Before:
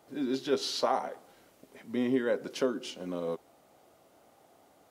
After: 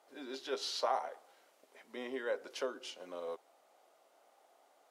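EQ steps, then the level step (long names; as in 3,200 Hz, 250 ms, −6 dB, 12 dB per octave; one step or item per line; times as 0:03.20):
resonant band-pass 580 Hz, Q 0.88
first difference
+16.0 dB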